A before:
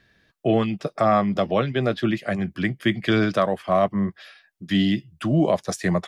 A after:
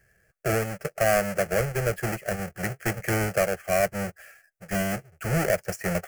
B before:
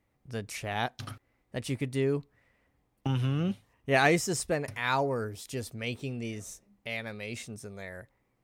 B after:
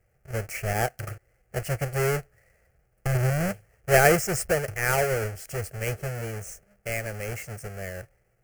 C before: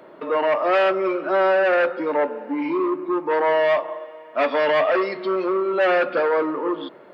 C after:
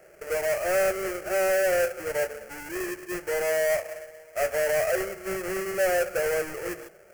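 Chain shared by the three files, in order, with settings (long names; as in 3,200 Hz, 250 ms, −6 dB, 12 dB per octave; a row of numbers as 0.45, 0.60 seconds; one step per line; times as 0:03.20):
each half-wave held at its own peak
phaser with its sweep stopped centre 1,000 Hz, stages 6
loudness normalisation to −27 LKFS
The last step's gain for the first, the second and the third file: −5.0, +3.5, −9.0 decibels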